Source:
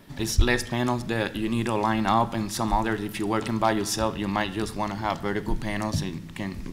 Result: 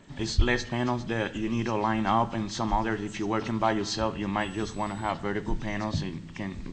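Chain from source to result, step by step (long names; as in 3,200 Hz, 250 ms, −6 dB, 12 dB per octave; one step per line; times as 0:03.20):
hearing-aid frequency compression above 2,600 Hz 1.5 to 1
0:04.40–0:05.09: steady tone 7,900 Hz −50 dBFS
level −2.5 dB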